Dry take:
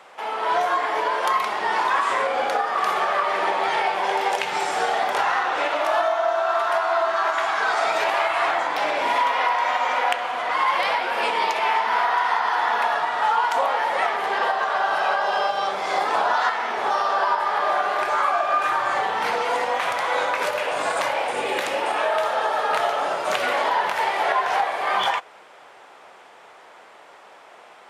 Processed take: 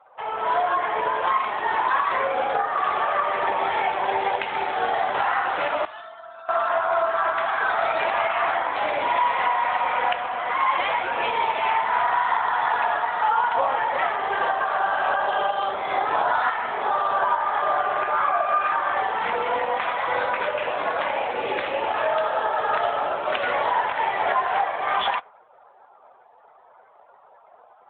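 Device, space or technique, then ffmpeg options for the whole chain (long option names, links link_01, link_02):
mobile call with aggressive noise cancelling: -filter_complex "[0:a]asettb=1/sr,asplit=3[link_01][link_02][link_03];[link_01]atrim=end=5.854[link_04];[link_02]atrim=start=5.85:end=6.49,asetpts=PTS-STARTPTS,afade=type=in:duration=0.004:curve=qsin,afade=type=out:start_time=0.636:duration=0.004:curve=qsin,aderivative[link_05];[link_03]atrim=start=6.486[link_06];[link_04][link_05]acrossfade=duration=0.004:curve1=hsin:curve2=qsin[link_07];[link_07][link_06]acrossfade=duration=0.004:curve1=qsin:curve2=hsin,highpass=120,afftdn=noise_reduction=20:noise_floor=-42" -ar 8000 -c:a libopencore_amrnb -b:a 12200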